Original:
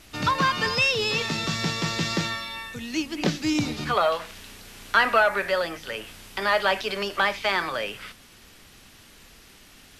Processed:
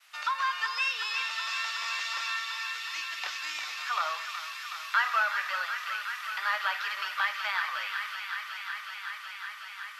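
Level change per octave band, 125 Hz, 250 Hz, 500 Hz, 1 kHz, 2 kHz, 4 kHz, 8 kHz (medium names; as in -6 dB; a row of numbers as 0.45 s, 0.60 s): under -40 dB, under -40 dB, -22.5 dB, -5.0 dB, -3.5 dB, -5.5 dB, -6.5 dB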